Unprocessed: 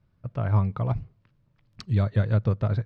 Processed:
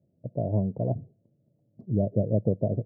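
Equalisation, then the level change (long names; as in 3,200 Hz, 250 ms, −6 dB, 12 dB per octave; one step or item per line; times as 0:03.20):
high-pass filter 190 Hz 12 dB per octave
elliptic low-pass filter 650 Hz, stop band 50 dB
+5.5 dB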